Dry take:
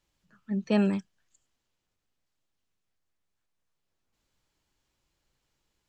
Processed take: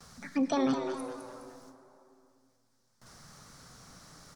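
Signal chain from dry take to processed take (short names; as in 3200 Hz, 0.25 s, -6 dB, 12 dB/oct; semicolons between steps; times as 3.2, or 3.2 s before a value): in parallel at +3 dB: negative-ratio compressor -26 dBFS, ratio -0.5; on the sum: treble ducked by the level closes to 2600 Hz, closed at -21 dBFS; limiter -20.5 dBFS, peak gain reduction 11 dB; graphic EQ 125/250/500/1000/2000/4000 Hz +6/-11/+7/+5/-9/+11 dB; frequency-shifting echo 0.279 s, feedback 33%, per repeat +85 Hz, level -9 dB; gate with hold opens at -58 dBFS; bell 540 Hz -6.5 dB 0.7 oct; speed mistake 33 rpm record played at 45 rpm; plate-style reverb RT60 2 s, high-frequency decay 0.65×, DRR 10.5 dB; three-band squash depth 40%; gain +6.5 dB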